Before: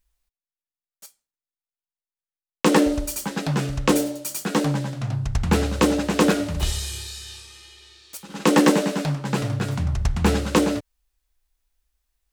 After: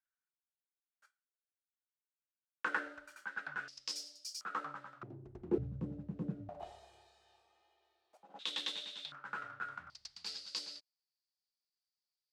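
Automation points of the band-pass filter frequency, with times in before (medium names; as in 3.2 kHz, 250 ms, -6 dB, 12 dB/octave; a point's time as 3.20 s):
band-pass filter, Q 10
1.5 kHz
from 3.68 s 5.1 kHz
from 4.41 s 1.3 kHz
from 5.03 s 360 Hz
from 5.58 s 130 Hz
from 6.49 s 710 Hz
from 8.39 s 3.6 kHz
from 9.12 s 1.4 kHz
from 9.90 s 4.7 kHz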